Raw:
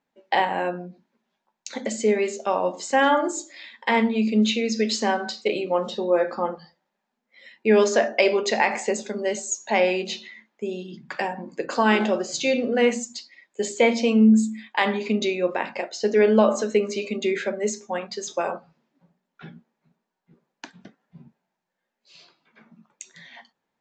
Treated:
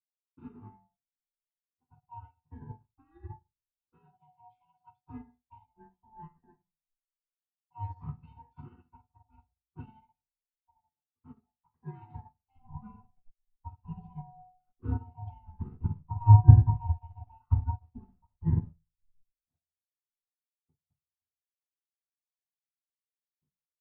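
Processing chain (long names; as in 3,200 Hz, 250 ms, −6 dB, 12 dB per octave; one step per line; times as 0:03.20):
neighbouring bands swapped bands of 500 Hz
low-pass that shuts in the quiet parts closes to 460 Hz, open at −17 dBFS
spectral tilt +1.5 dB per octave, from 0:12.50 −3 dB per octave
mains-hum notches 60/120/180/240/300/360/420 Hz
brickwall limiter −15 dBFS, peak gain reduction 15.5 dB
bit reduction 7 bits
high-frequency loss of the air 390 metres
convolution reverb RT60 0.35 s, pre-delay 47 ms
expander for the loud parts 2.5 to 1, over −45 dBFS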